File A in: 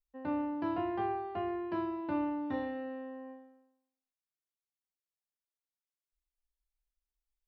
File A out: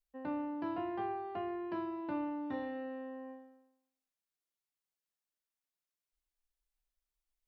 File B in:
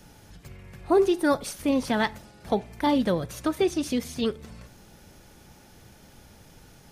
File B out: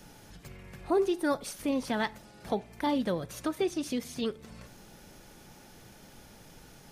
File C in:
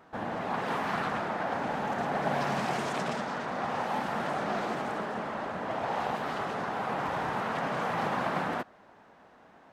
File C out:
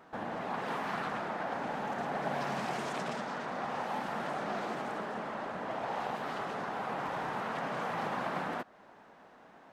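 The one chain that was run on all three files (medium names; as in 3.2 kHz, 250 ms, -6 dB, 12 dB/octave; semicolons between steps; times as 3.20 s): peaking EQ 75 Hz -7.5 dB 1.1 oct; in parallel at +2 dB: compression, threshold -40 dBFS; on the sum: trim -7 dB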